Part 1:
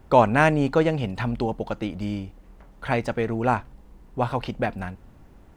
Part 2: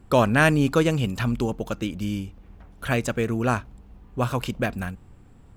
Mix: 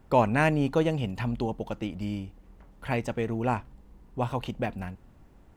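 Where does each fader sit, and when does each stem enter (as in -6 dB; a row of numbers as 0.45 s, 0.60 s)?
-5.5 dB, -16.0 dB; 0.00 s, 0.00 s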